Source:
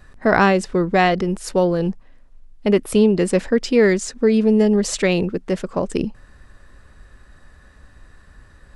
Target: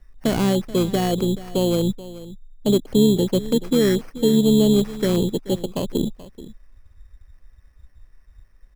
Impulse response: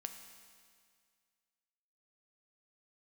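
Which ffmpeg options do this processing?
-filter_complex "[0:a]afwtdn=0.0501,deesser=0.95,acrossover=split=350|4700[s0][s1][s2];[s1]alimiter=limit=0.119:level=0:latency=1:release=115[s3];[s0][s3][s2]amix=inputs=3:normalize=0,asplit=2[s4][s5];[s5]asetrate=29433,aresample=44100,atempo=1.49831,volume=0.251[s6];[s4][s6]amix=inputs=2:normalize=0,acrusher=samples=12:mix=1:aa=0.000001,asplit=2[s7][s8];[s8]aecho=0:1:431:0.141[s9];[s7][s9]amix=inputs=2:normalize=0"

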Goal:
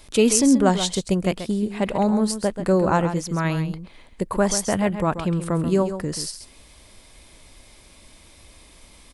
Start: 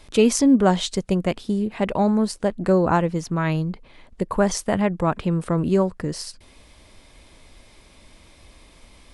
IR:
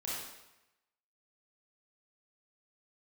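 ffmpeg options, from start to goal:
-filter_complex "[0:a]highshelf=f=6500:g=10.5,asplit=2[s0][s1];[s1]aecho=0:1:134:0.316[s2];[s0][s2]amix=inputs=2:normalize=0,volume=0.891"

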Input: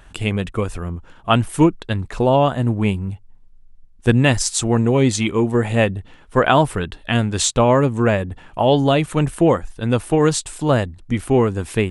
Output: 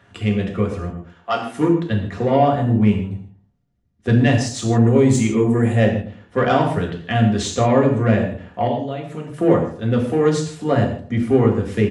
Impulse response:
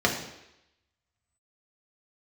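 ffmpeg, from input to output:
-filter_complex "[0:a]asettb=1/sr,asplit=3[s0][s1][s2];[s0]atrim=end=0.894[s3];[s1]atrim=start=0.89:end=1.58,asetpts=PTS-STARTPTS,afade=t=in:d=0.004:c=qsin,afade=t=out:st=0.686:d=0.004:c=qsin,highpass=500[s4];[s2]atrim=start=1.576[s5];[s3][s4]acrossfade=d=0.004:c1=hsin:c2=qsin[s6];[s6][s5]acrossfade=d=0.004:c1=qsin:c2=hsin,asettb=1/sr,asplit=3[s7][s8][s9];[s7]atrim=end=4.854[s10];[s8]atrim=start=4.85:end=5.76,asetpts=PTS-STARTPTS,afade=t=in:d=0.004:c=qsin,afade=t=out:st=0.906:d=0.004:c=qsin,highshelf=f=6400:t=q:w=1.5:g=10[s11];[s9]atrim=start=5.756[s12];[s10][s11]acrossfade=d=0.004:c1=hsin:c2=qsin[s13];[s13][s12]acrossfade=d=0.004:c1=qsin:c2=hsin,asettb=1/sr,asplit=3[s14][s15][s16];[s14]atrim=end=8.674[s17];[s15]atrim=start=8.67:end=9.34,asetpts=PTS-STARTPTS,afade=t=in:d=0.004:c=qsin,afade=t=out:st=0.666:d=0.004:c=qsin,acompressor=threshold=0.0501:ratio=5[s18];[s16]atrim=start=9.336[s19];[s17][s18]acrossfade=d=0.004:c1=hsin:c2=qsin[s20];[s20][s19]acrossfade=d=0.004:c1=qsin:c2=hsin,asoftclip=type=tanh:threshold=0.422,asplit=2[s21][s22];[s22]adelay=112,lowpass=f=1300:p=1,volume=0.211,asplit=2[s23][s24];[s24]adelay=112,lowpass=f=1300:p=1,volume=0.27,asplit=2[s25][s26];[s26]adelay=112,lowpass=f=1300:p=1,volume=0.27[s27];[s21][s23][s25][s27]amix=inputs=4:normalize=0[s28];[1:a]atrim=start_sample=2205,afade=t=out:st=0.22:d=0.01,atrim=end_sample=10143[s29];[s28][s29]afir=irnorm=-1:irlink=0,volume=0.168"

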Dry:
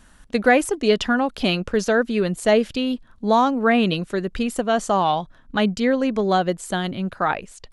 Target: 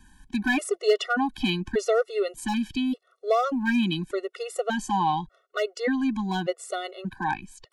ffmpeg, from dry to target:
-filter_complex "[0:a]acrossover=split=200[s0][s1];[s0]acompressor=threshold=0.0282:ratio=6[s2];[s2][s1]amix=inputs=2:normalize=0,volume=2.99,asoftclip=hard,volume=0.335,afftfilt=real='re*gt(sin(2*PI*0.85*pts/sr)*(1-2*mod(floor(b*sr/1024/370),2)),0)':imag='im*gt(sin(2*PI*0.85*pts/sr)*(1-2*mod(floor(b*sr/1024/370),2)),0)':win_size=1024:overlap=0.75,volume=0.794"

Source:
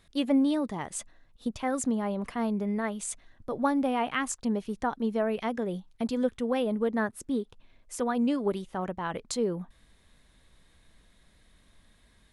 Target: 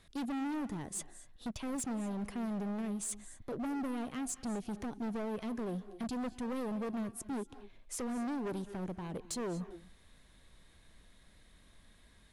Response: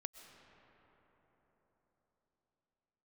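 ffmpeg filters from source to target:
-filter_complex "[0:a]acrossover=split=500|5200[s0][s1][s2];[s1]acompressor=threshold=0.00447:ratio=5[s3];[s0][s3][s2]amix=inputs=3:normalize=0,asoftclip=type=hard:threshold=0.0188[s4];[1:a]atrim=start_sample=2205,afade=t=out:st=0.19:d=0.01,atrim=end_sample=8820,asetrate=25137,aresample=44100[s5];[s4][s5]afir=irnorm=-1:irlink=0,volume=1.12"

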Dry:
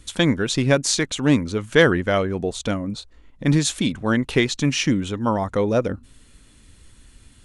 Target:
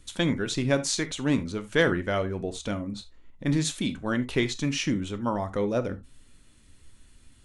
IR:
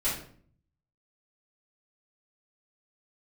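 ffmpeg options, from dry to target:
-filter_complex "[0:a]asplit=2[s0][s1];[1:a]atrim=start_sample=2205,atrim=end_sample=3969[s2];[s1][s2]afir=irnorm=-1:irlink=0,volume=0.158[s3];[s0][s3]amix=inputs=2:normalize=0,volume=0.398"

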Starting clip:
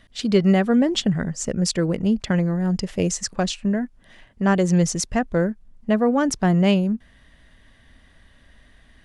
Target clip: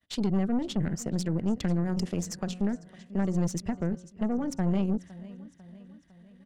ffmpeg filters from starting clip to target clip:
-filter_complex "[0:a]highpass=55,bandreject=f=90.68:t=h:w=4,bandreject=f=181.36:t=h:w=4,bandreject=f=272.04:t=h:w=4,bandreject=f=362.72:t=h:w=4,bandreject=f=453.4:t=h:w=4,bandreject=f=544.08:t=h:w=4,bandreject=f=634.76:t=h:w=4,bandreject=f=725.44:t=h:w=4,bandreject=f=816.12:t=h:w=4,bandreject=f=906.8:t=h:w=4,bandreject=f=997.48:t=h:w=4,bandreject=f=1088.16:t=h:w=4,bandreject=f=1178.84:t=h:w=4,bandreject=f=1269.52:t=h:w=4,bandreject=f=1360.2:t=h:w=4,bandreject=f=1450.88:t=h:w=4,bandreject=f=1541.56:t=h:w=4,agate=range=0.0224:threshold=0.00447:ratio=3:detection=peak,lowshelf=f=120:g=-7.5,acrossover=split=220[s0][s1];[s0]aeval=exprs='0.158*(cos(1*acos(clip(val(0)/0.158,-1,1)))-cos(1*PI/2))+0.00251*(cos(4*acos(clip(val(0)/0.158,-1,1)))-cos(4*PI/2))+0.0316*(cos(5*acos(clip(val(0)/0.158,-1,1)))-cos(5*PI/2))+0.00447*(cos(6*acos(clip(val(0)/0.158,-1,1)))-cos(6*PI/2))+0.00355*(cos(7*acos(clip(val(0)/0.158,-1,1)))-cos(7*PI/2))':c=same[s2];[s1]acompressor=threshold=0.0282:ratio=20[s3];[s2][s3]amix=inputs=2:normalize=0,aecho=1:1:703|1406|2109|2812|3515:0.126|0.0692|0.0381|0.0209|0.0115,aeval=exprs='(tanh(11.2*val(0)+0.7)-tanh(0.7))/11.2':c=same,atempo=1.4"

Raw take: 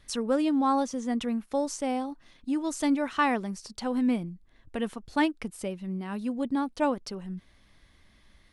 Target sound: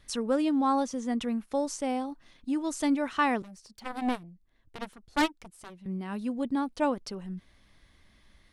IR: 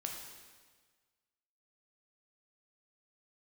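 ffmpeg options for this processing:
-filter_complex "[0:a]asettb=1/sr,asplit=3[s0][s1][s2];[s0]atrim=end=3.424[s3];[s1]atrim=start=3.42:end=5.86,asetpts=PTS-STARTPTS,afade=t=in:d=0.004:c=qsin,afade=t=out:st=2.436:d=0.004:c=qsin,aeval=exprs='0.251*(cos(1*acos(clip(val(0)/0.251,-1,1)))-cos(1*PI/2))+0.0501*(cos(7*acos(clip(val(0)/0.251,-1,1)))-cos(7*PI/2))':c=same[s4];[s2]atrim=start=5.856[s5];[s3][s4]acrossfade=d=0.004:c1=hsin:c2=qsin[s6];[s6][s5]acrossfade=d=0.004:c1=qsin:c2=hsin,volume=0.891"

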